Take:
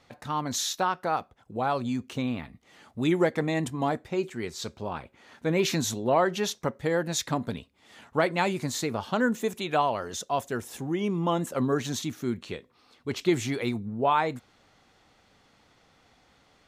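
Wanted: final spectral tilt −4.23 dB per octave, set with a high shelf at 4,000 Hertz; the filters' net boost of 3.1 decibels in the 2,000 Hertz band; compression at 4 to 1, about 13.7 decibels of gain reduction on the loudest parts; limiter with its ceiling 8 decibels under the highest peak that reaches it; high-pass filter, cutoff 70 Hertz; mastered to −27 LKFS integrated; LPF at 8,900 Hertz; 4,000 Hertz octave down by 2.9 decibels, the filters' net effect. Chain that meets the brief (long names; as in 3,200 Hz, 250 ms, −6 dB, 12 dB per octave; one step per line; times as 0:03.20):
high-pass filter 70 Hz
low-pass filter 8,900 Hz
parametric band 2,000 Hz +4.5 dB
high-shelf EQ 4,000 Hz +7 dB
parametric band 4,000 Hz −9 dB
downward compressor 4 to 1, threshold −35 dBFS
level +13 dB
brickwall limiter −15.5 dBFS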